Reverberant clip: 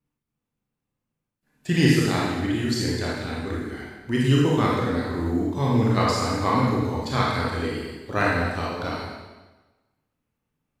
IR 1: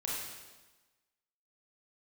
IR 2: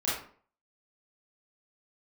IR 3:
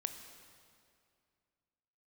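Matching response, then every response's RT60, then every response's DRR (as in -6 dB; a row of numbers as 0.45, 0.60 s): 1; 1.2, 0.50, 2.3 s; -5.5, -9.5, 7.0 dB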